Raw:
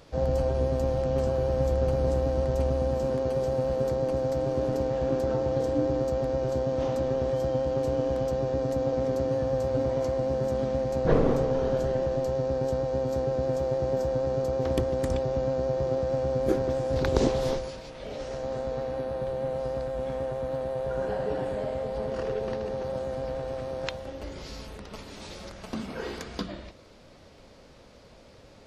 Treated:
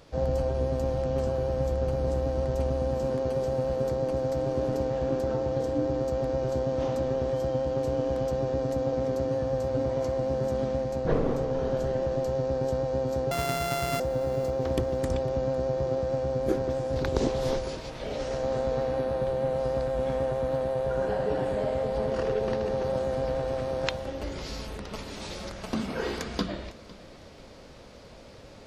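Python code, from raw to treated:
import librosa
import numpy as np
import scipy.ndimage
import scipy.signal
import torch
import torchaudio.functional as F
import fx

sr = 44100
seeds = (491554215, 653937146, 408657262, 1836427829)

p1 = fx.sample_sort(x, sr, block=64, at=(13.31, 14.0))
p2 = p1 + fx.echo_feedback(p1, sr, ms=504, feedback_pct=31, wet_db=-20.5, dry=0)
y = fx.rider(p2, sr, range_db=4, speed_s=0.5)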